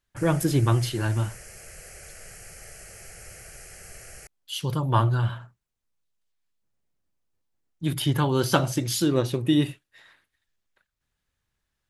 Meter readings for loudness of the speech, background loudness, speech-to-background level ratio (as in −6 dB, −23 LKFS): −25.0 LKFS, −43.5 LKFS, 18.5 dB